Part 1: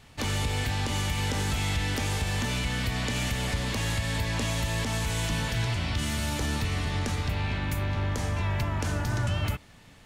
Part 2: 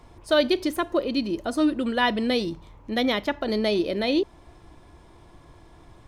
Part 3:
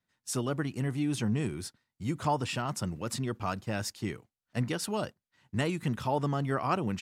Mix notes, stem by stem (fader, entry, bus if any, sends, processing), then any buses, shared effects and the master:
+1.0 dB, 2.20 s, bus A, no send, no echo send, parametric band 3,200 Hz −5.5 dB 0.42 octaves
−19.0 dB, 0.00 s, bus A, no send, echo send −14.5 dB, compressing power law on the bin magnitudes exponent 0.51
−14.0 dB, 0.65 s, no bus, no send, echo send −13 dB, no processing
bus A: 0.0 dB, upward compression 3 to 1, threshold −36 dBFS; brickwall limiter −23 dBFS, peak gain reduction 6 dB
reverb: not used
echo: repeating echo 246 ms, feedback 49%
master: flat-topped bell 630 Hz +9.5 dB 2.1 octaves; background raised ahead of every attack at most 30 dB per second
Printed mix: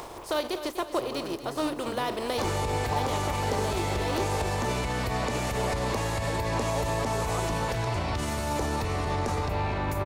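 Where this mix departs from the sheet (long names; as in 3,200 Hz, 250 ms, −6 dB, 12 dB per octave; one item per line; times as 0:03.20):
stem 2 −19.0 dB → −12.0 dB
master: missing background raised ahead of every attack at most 30 dB per second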